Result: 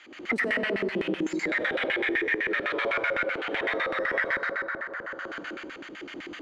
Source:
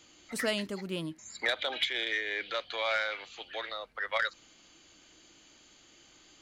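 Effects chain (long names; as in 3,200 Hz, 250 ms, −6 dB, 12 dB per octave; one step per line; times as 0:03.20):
in parallel at 0 dB: downward compressor 6 to 1, threshold −46 dBFS, peak gain reduction 19.5 dB
on the sum: power curve on the samples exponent 0.5
noise gate −32 dBFS, range −35 dB
convolution reverb RT60 1.7 s, pre-delay 72 ms, DRR −5 dB
auto-filter band-pass square 7.9 Hz 350–1,900 Hz
high-shelf EQ 4,300 Hz −10.5 dB
multiband upward and downward compressor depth 100%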